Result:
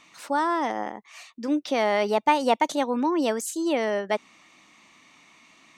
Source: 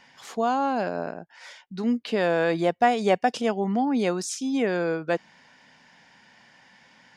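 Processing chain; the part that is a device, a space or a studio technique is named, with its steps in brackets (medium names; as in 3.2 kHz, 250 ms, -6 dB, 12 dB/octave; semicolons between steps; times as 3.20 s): nightcore (tape speed +24%)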